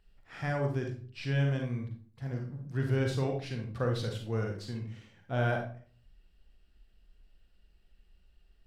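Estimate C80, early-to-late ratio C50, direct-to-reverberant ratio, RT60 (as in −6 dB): 10.5 dB, 5.0 dB, 2.0 dB, 0.45 s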